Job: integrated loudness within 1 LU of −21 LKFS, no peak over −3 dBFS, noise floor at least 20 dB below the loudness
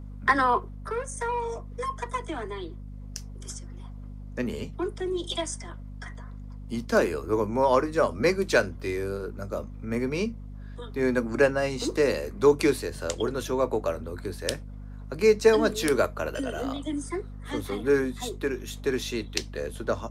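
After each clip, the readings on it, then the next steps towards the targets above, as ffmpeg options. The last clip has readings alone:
mains hum 50 Hz; hum harmonics up to 250 Hz; level of the hum −37 dBFS; integrated loudness −27.5 LKFS; sample peak −4.5 dBFS; target loudness −21.0 LKFS
→ -af "bandreject=frequency=50:width_type=h:width=6,bandreject=frequency=100:width_type=h:width=6,bandreject=frequency=150:width_type=h:width=6,bandreject=frequency=200:width_type=h:width=6,bandreject=frequency=250:width_type=h:width=6"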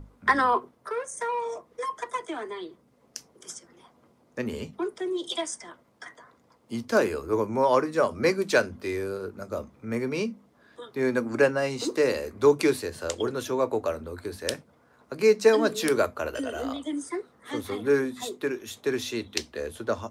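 mains hum none found; integrated loudness −27.5 LKFS; sample peak −4.5 dBFS; target loudness −21.0 LKFS
→ -af "volume=6.5dB,alimiter=limit=-3dB:level=0:latency=1"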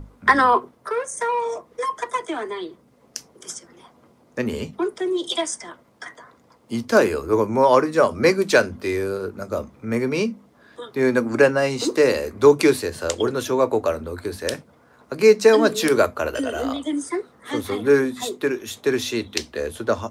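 integrated loudness −21.0 LKFS; sample peak −3.0 dBFS; background noise floor −56 dBFS

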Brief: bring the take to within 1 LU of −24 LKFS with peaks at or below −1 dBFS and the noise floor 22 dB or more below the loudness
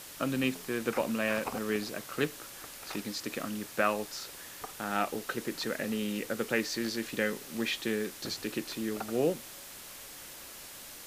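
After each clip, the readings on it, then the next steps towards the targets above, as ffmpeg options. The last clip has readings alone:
background noise floor −47 dBFS; target noise floor −56 dBFS; integrated loudness −33.5 LKFS; sample peak −12.5 dBFS; target loudness −24.0 LKFS
→ -af "afftdn=noise_reduction=9:noise_floor=-47"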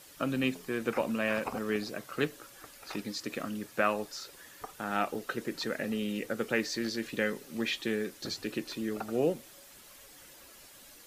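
background noise floor −54 dBFS; target noise floor −56 dBFS
→ -af "afftdn=noise_reduction=6:noise_floor=-54"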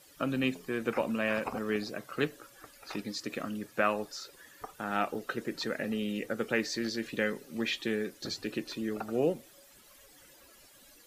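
background noise floor −58 dBFS; integrated loudness −33.5 LKFS; sample peak −13.0 dBFS; target loudness −24.0 LKFS
→ -af "volume=9.5dB"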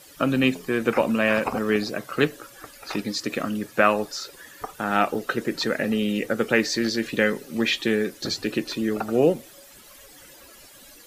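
integrated loudness −24.0 LKFS; sample peak −3.5 dBFS; background noise floor −49 dBFS

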